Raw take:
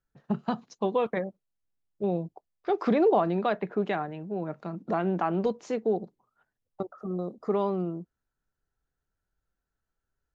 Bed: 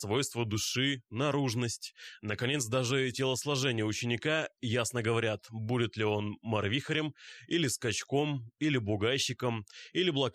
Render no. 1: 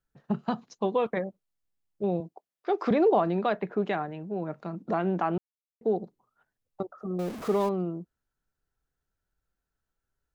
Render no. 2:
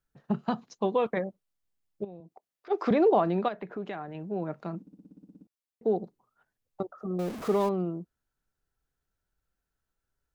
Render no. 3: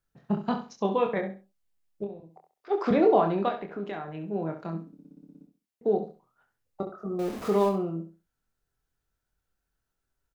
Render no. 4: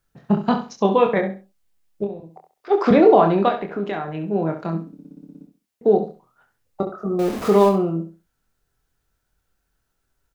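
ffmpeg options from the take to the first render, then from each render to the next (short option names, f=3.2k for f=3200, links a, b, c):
-filter_complex "[0:a]asettb=1/sr,asplit=3[a][b][c];[a]atrim=end=2.204[d];[b]atrim=start=2.2:end=2.91,asetpts=PTS-STARTPTS,afade=t=in:d=0.004:c=qsin,afade=t=out:st=0.706:d=0.004:c=qsin,highpass=210[e];[c]atrim=start=2.906[f];[d][e]acrossfade=d=0.004:c1=hsin:c2=qsin[g];[g][f]acrossfade=d=0.004:c1=qsin:c2=hsin,asettb=1/sr,asplit=3[h][i][j];[h]atrim=end=7.194[k];[i]atrim=start=7.19:end=7.69,asetpts=PTS-STARTPTS,afade=t=in:d=0.004:c=qsin,afade=t=out:st=0.496:d=0.004:c=qsin,aeval=exprs='val(0)+0.5*0.0178*sgn(val(0))':c=same[l];[j]atrim=start=7.686[m];[k][l]acrossfade=d=0.004:c1=hsin:c2=qsin[n];[n][m]acrossfade=d=0.004:c1=qsin:c2=hsin,asplit=3[o][p][q];[o]atrim=end=5.38,asetpts=PTS-STARTPTS,afade=t=out:st=5.376:d=0.004:c=hsin[r];[p]atrim=start=5.38:end=5.81,asetpts=PTS-STARTPTS,volume=0[s];[q]atrim=start=5.81,asetpts=PTS-STARTPTS,afade=t=in:d=0.004:c=hsin[t];[r][s][t]concat=n=3:v=0:a=1"
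-filter_complex "[0:a]asplit=3[a][b][c];[a]afade=t=out:st=2.03:d=0.02[d];[b]acompressor=threshold=-48dB:ratio=3:attack=3.2:release=140:knee=1:detection=peak,afade=t=in:st=2.03:d=0.02,afade=t=out:st=2.7:d=0.02[e];[c]afade=t=in:st=2.7:d=0.02[f];[d][e][f]amix=inputs=3:normalize=0,asettb=1/sr,asplit=3[g][h][i];[g]atrim=end=3.484[j];[h]atrim=start=3.48:end=4.15,asetpts=PTS-STARTPTS,afade=t=in:d=0.004:c=qsin,afade=t=out:st=0.666:d=0.004:c=qsin,acompressor=threshold=-38dB:ratio=2:attack=3.2:release=140:knee=1:detection=peak[k];[i]atrim=start=4.146[l];[j][k]acrossfade=d=0.004:c1=hsin:c2=qsin[m];[m][l]acrossfade=d=0.004:c1=qsin:c2=hsin,asplit=12[n][o][p][q][r][s][t][u][v][w][x][y];[n]atrim=end=4.872[z];[o]atrim=start=4.808:end=4.872[aa];[p]atrim=start=4.808:end=4.872[ab];[q]atrim=start=4.808:end=4.872[ac];[r]atrim=start=4.808:end=4.872[ad];[s]atrim=start=4.808:end=4.872[ae];[t]atrim=start=4.808:end=4.872[af];[u]atrim=start=4.808:end=4.872[ag];[v]atrim=start=4.808:end=4.872[ah];[w]atrim=start=4.808:end=4.872[ai];[x]atrim=start=4.808:end=4.872[aj];[y]atrim=start=5.468[ak];[z][aa]acrossfade=d=0.004:c1=hsin:c2=hsin[al];[al][ab]acrossfade=d=0.004:c1=hsin:c2=hsin[am];[am][ac]acrossfade=d=0.004:c1=hsin:c2=hsin[an];[an][ad]acrossfade=d=0.004:c1=hsin:c2=hsin[ao];[ao][ae]acrossfade=d=0.004:c1=hsin:c2=hsin[ap];[ap][af]acrossfade=d=0.004:c1=hsin:c2=hsin[aq];[aq][ag]acrossfade=d=0.004:c1=hsin:c2=hsin[ar];[ar][ah]acrossfade=d=0.004:c1=hsin:c2=hsin[as];[as][ai]acrossfade=d=0.004:c1=hsin:c2=hsin[at];[at][aj]acrossfade=d=0.004:c1=hsin:c2=hsin[au];[au][ak]acrossfade=d=0.004:c1=hsin:c2=hsin"
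-filter_complex "[0:a]asplit=2[a][b];[b]adelay=25,volume=-5dB[c];[a][c]amix=inputs=2:normalize=0,asplit=2[d][e];[e]aecho=0:1:67|134|201:0.316|0.0759|0.0182[f];[d][f]amix=inputs=2:normalize=0"
-af "volume=9dB,alimiter=limit=-3dB:level=0:latency=1"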